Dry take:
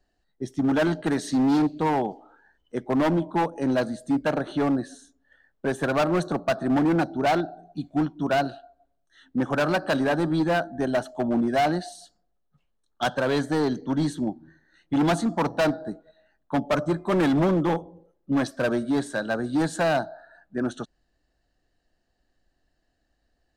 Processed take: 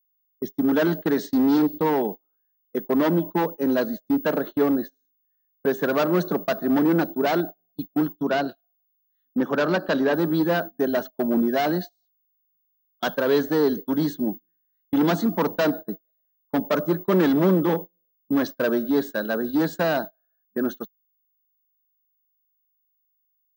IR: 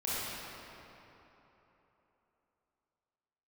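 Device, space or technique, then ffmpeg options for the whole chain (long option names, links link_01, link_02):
old television with a line whistle: -filter_complex "[0:a]highpass=frequency=170:width=0.5412,highpass=frequency=170:width=1.3066,equalizer=frequency=190:width_type=q:width=4:gain=5,equalizer=frequency=430:width_type=q:width=4:gain=6,equalizer=frequency=760:width_type=q:width=4:gain=-5,equalizer=frequency=2400:width_type=q:width=4:gain=-4,lowpass=frequency=6600:width=0.5412,lowpass=frequency=6600:width=1.3066,aeval=exprs='val(0)+0.0126*sin(2*PI*15625*n/s)':channel_layout=same,agate=range=-33dB:threshold=-30dB:ratio=16:detection=peak,asettb=1/sr,asplit=3[link_01][link_02][link_03];[link_01]atrim=end=8.124[link_04];[link_02]atrim=start=8.12:end=10.14,asetpts=PTS-STARTPTS,afade=type=in:duration=0.004:curve=qsin,afade=type=out:start_time=2.016:duration=0.004:curve=qsin,acrossover=split=7500[link_05][link_06];[link_06]acompressor=threshold=-57dB:ratio=4:attack=1:release=60[link_07];[link_05][link_07]amix=inputs=2:normalize=0[link_08];[link_03]atrim=start=10.136[link_09];[link_04][link_08]acrossfade=duration=0.004:curve1=hsin:curve2=qsin[link_10];[link_10][link_09]acrossfade=duration=0.004:curve1=qsin:curve2=hsin,volume=1dB"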